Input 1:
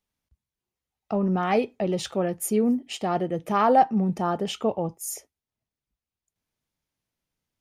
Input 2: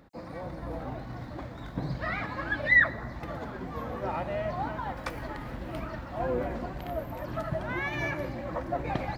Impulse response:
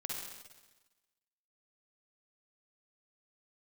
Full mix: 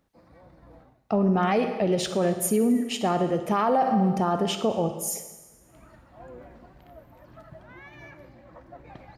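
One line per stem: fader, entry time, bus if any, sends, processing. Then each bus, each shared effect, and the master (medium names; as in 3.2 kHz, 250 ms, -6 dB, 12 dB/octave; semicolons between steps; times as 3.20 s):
0.0 dB, 0.00 s, send -5 dB, none
-15.0 dB, 0.00 s, send -21.5 dB, auto duck -24 dB, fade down 0.30 s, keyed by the first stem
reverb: on, RT60 1.2 s, pre-delay 45 ms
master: peak limiter -14.5 dBFS, peak gain reduction 10 dB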